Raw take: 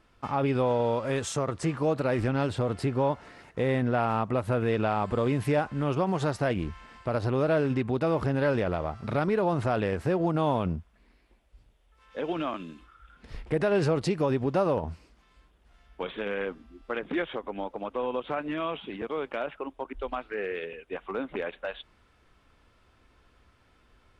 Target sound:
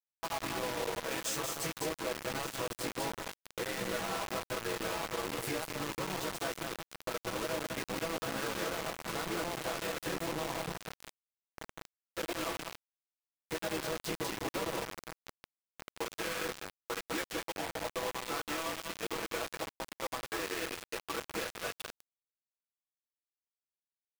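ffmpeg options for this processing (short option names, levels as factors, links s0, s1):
-filter_complex "[0:a]highpass=f=620:p=1,asplit=2[s0][s1];[s1]aecho=0:1:1186|2372|3558|4744|5930:0.141|0.0777|0.0427|0.0235|0.0129[s2];[s0][s2]amix=inputs=2:normalize=0,flanger=delay=8.7:depth=5.9:regen=-35:speed=1.1:shape=triangular,asplit=4[s3][s4][s5][s6];[s4]asetrate=33038,aresample=44100,atempo=1.33484,volume=0.158[s7];[s5]asetrate=35002,aresample=44100,atempo=1.25992,volume=0.631[s8];[s6]asetrate=88200,aresample=44100,atempo=0.5,volume=0.126[s9];[s3][s7][s8][s9]amix=inputs=4:normalize=0,aecho=1:1:6.1:0.73,acompressor=threshold=0.0178:ratio=12,highshelf=f=7100:g=6,asplit=2[s10][s11];[s11]aecho=0:1:199:0.596[s12];[s10][s12]amix=inputs=2:normalize=0,acrusher=bits=5:mix=0:aa=0.000001"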